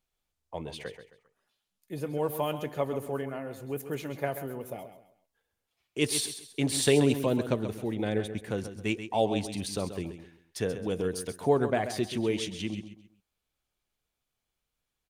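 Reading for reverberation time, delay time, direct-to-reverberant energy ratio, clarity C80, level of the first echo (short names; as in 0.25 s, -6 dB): none, 0.133 s, none, none, -10.5 dB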